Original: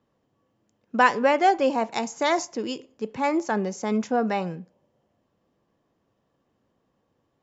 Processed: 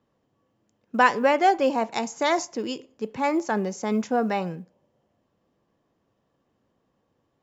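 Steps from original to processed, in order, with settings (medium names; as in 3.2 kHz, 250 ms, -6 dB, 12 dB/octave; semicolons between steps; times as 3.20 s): short-mantissa float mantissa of 6-bit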